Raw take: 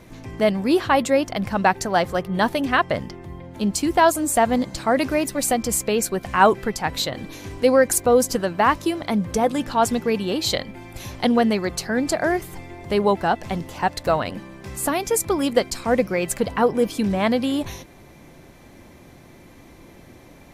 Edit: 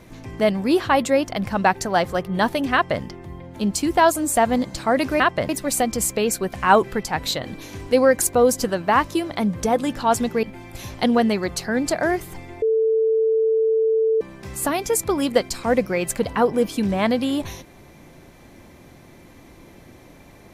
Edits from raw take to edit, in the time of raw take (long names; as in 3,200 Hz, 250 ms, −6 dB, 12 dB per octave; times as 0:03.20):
0:02.73–0:03.02: duplicate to 0:05.20
0:10.14–0:10.64: remove
0:12.83–0:14.42: beep over 444 Hz −15.5 dBFS